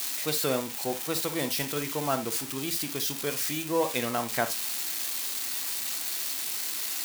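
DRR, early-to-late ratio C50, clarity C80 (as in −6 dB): 8.0 dB, 13.0 dB, 28.0 dB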